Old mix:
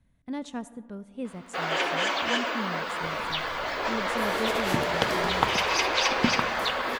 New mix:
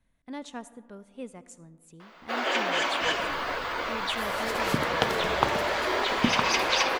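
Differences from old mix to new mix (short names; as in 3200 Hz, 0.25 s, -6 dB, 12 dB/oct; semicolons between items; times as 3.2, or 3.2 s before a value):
speech: add bell 110 Hz -11.5 dB 2.5 oct; first sound: entry +0.75 s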